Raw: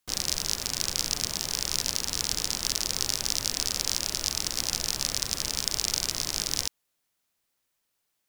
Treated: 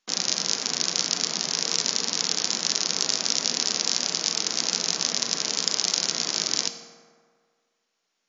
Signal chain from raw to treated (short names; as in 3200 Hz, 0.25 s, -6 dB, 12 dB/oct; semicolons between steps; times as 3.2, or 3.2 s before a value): steep high-pass 160 Hz 48 dB/oct; reverb RT60 1.8 s, pre-delay 3 ms, DRR 6.5 dB; gain +4 dB; MP2 96 kbps 22050 Hz